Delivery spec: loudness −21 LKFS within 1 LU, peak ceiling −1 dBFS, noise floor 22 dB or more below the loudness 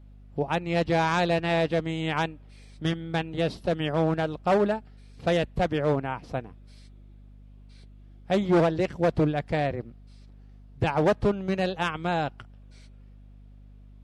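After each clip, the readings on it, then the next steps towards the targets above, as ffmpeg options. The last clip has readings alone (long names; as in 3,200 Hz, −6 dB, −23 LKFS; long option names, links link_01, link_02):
mains hum 50 Hz; hum harmonics up to 250 Hz; level of the hum −47 dBFS; integrated loudness −26.5 LKFS; sample peak −12.5 dBFS; target loudness −21.0 LKFS
→ -af "bandreject=frequency=50:width_type=h:width=4,bandreject=frequency=100:width_type=h:width=4,bandreject=frequency=150:width_type=h:width=4,bandreject=frequency=200:width_type=h:width=4,bandreject=frequency=250:width_type=h:width=4"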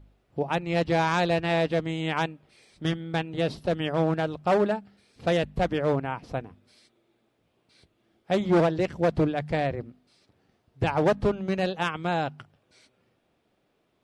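mains hum none found; integrated loudness −27.0 LKFS; sample peak −12.5 dBFS; target loudness −21.0 LKFS
→ -af "volume=6dB"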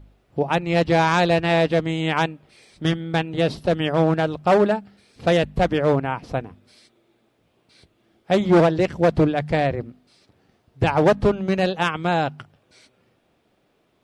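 integrated loudness −21.0 LKFS; sample peak −6.5 dBFS; background noise floor −65 dBFS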